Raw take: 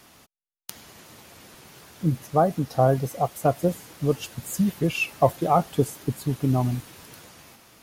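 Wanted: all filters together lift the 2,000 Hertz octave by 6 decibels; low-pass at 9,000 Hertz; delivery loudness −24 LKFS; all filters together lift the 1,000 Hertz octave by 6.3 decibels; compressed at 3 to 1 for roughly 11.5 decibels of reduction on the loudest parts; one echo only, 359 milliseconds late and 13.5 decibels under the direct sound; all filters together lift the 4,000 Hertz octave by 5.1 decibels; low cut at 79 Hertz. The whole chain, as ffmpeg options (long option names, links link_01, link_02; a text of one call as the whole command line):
ffmpeg -i in.wav -af "highpass=79,lowpass=9000,equalizer=frequency=1000:width_type=o:gain=8.5,equalizer=frequency=2000:width_type=o:gain=5,equalizer=frequency=4000:width_type=o:gain=4.5,acompressor=threshold=-25dB:ratio=3,aecho=1:1:359:0.211,volume=5.5dB" out.wav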